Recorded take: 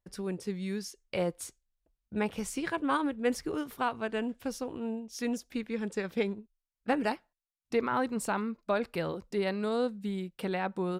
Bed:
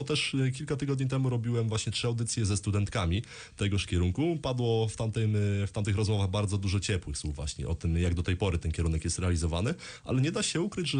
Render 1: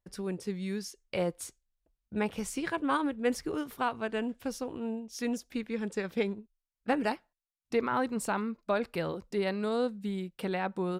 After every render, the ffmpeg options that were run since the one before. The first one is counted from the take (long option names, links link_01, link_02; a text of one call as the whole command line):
ffmpeg -i in.wav -af anull out.wav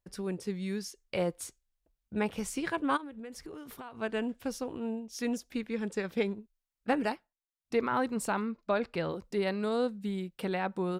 ffmpeg -i in.wav -filter_complex "[0:a]asplit=3[link_01][link_02][link_03];[link_01]afade=type=out:start_time=2.96:duration=0.02[link_04];[link_02]acompressor=threshold=-40dB:ratio=12:attack=3.2:release=140:knee=1:detection=peak,afade=type=in:start_time=2.96:duration=0.02,afade=type=out:start_time=3.99:duration=0.02[link_05];[link_03]afade=type=in:start_time=3.99:duration=0.02[link_06];[link_04][link_05][link_06]amix=inputs=3:normalize=0,asettb=1/sr,asplit=3[link_07][link_08][link_09];[link_07]atrim=end=8.454[link_10];[link_08]atrim=start=8.45:end=9.11,asetpts=PTS-STARTPTS,afade=type=in:duration=0.004:curve=qsin,afade=type=out:start_time=0.656:duration=0.004:curve=qsin,lowpass=6300[link_11];[link_09]atrim=start=9.106[link_12];[link_10][link_11]acrossfade=duration=0.004:curve1=hsin:curve2=qsin[link_13];[link_13][link_12]acrossfade=duration=0.004:curve1=qsin:curve2=hsin,asplit=3[link_14][link_15][link_16];[link_14]atrim=end=7.29,asetpts=PTS-STARTPTS,afade=type=out:start_time=7.02:duration=0.27:silence=0.354813[link_17];[link_15]atrim=start=7.29:end=7.51,asetpts=PTS-STARTPTS,volume=-9dB[link_18];[link_16]atrim=start=7.51,asetpts=PTS-STARTPTS,afade=type=in:duration=0.27:silence=0.354813[link_19];[link_17][link_18][link_19]concat=n=3:v=0:a=1" out.wav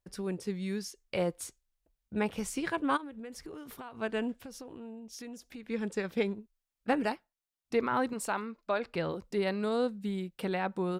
ffmpeg -i in.wav -filter_complex "[0:a]asettb=1/sr,asplit=3[link_01][link_02][link_03];[link_01]atrim=end=4.424[link_04];[link_02]atrim=start=4.42:end=5.67,asetpts=PTS-STARTPTS,afade=type=in:duration=0.004:curve=qsin,afade=type=out:start_time=1.246:duration=0.004:curve=qsin,acompressor=threshold=-42dB:ratio=5:attack=3.2:release=140:knee=1:detection=peak[link_05];[link_03]atrim=start=5.666[link_06];[link_04][link_05]acrossfade=duration=0.004:curve1=hsin:curve2=qsin[link_07];[link_07][link_06]acrossfade=duration=0.004:curve1=qsin:curve2=hsin,asettb=1/sr,asplit=3[link_08][link_09][link_10];[link_08]atrim=end=8.134[link_11];[link_09]atrim=start=8.13:end=8.86,asetpts=PTS-STARTPTS,afade=type=in:duration=0.004:curve=qsin,afade=type=out:start_time=0.726:duration=0.004:curve=qsin,equalizer=frequency=90:width=0.4:gain=-11.5[link_12];[link_10]atrim=start=8.856[link_13];[link_11][link_12]acrossfade=duration=0.004:curve1=hsin:curve2=qsin[link_14];[link_14][link_13]acrossfade=duration=0.004:curve1=qsin:curve2=hsin" out.wav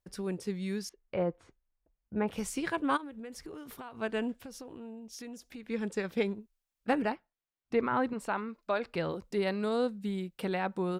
ffmpeg -i in.wav -filter_complex "[0:a]asettb=1/sr,asplit=3[link_01][link_02][link_03];[link_01]atrim=end=0.894[link_04];[link_02]atrim=start=0.89:end=2.28,asetpts=PTS-STARTPTS,afade=type=in:duration=0.004:curve=qsin,afade=type=out:start_time=1.386:duration=0.004:curve=qsin,lowpass=1600[link_05];[link_03]atrim=start=2.276[link_06];[link_04][link_05]acrossfade=duration=0.004:curve1=hsin:curve2=qsin[link_07];[link_07][link_06]acrossfade=duration=0.004:curve1=qsin:curve2=hsin,asettb=1/sr,asplit=3[link_08][link_09][link_10];[link_08]atrim=end=7.024[link_11];[link_09]atrim=start=7.02:end=8.49,asetpts=PTS-STARTPTS,afade=type=in:duration=0.004:curve=qsin,afade=type=out:start_time=1.466:duration=0.004:curve=qsin,bass=frequency=250:gain=2,treble=frequency=4000:gain=-12[link_12];[link_10]atrim=start=8.486[link_13];[link_11][link_12]acrossfade=duration=0.004:curve1=hsin:curve2=qsin[link_14];[link_14][link_13]acrossfade=duration=0.004:curve1=qsin:curve2=hsin" out.wav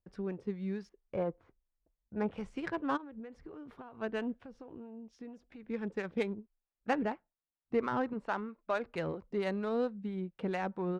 ffmpeg -i in.wav -filter_complex "[0:a]acrossover=split=560[link_01][link_02];[link_01]aeval=exprs='val(0)*(1-0.5/2+0.5/2*cos(2*PI*4.4*n/s))':channel_layout=same[link_03];[link_02]aeval=exprs='val(0)*(1-0.5/2-0.5/2*cos(2*PI*4.4*n/s))':channel_layout=same[link_04];[link_03][link_04]amix=inputs=2:normalize=0,adynamicsmooth=sensitivity=4:basefreq=1800" out.wav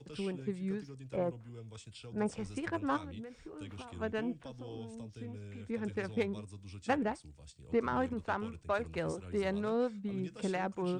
ffmpeg -i in.wav -i bed.wav -filter_complex "[1:a]volume=-19.5dB[link_01];[0:a][link_01]amix=inputs=2:normalize=0" out.wav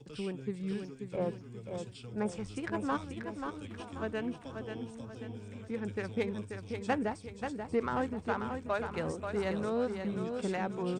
ffmpeg -i in.wav -af "aecho=1:1:535|1070|1605|2140|2675:0.473|0.203|0.0875|0.0376|0.0162" out.wav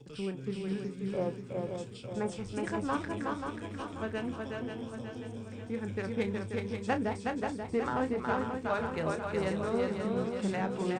ffmpeg -i in.wav -filter_complex "[0:a]asplit=2[link_01][link_02];[link_02]adelay=31,volume=-10dB[link_03];[link_01][link_03]amix=inputs=2:normalize=0,aecho=1:1:368:0.668" out.wav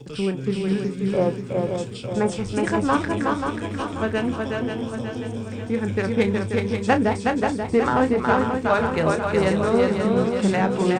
ffmpeg -i in.wav -af "volume=12dB" out.wav